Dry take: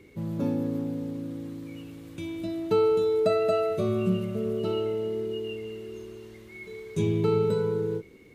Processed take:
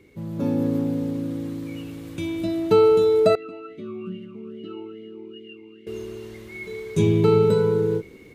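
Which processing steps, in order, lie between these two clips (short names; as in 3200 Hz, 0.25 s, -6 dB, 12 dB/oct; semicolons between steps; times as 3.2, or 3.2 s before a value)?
AGC gain up to 8 dB; 3.35–5.87 vowel sweep i-u 2.4 Hz; gain -1 dB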